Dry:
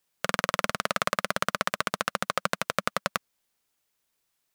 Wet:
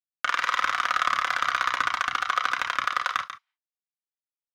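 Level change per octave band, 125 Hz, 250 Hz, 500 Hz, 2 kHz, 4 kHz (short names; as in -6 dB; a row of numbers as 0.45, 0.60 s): under -10 dB, -13.0 dB, -11.0 dB, +5.5 dB, +2.0 dB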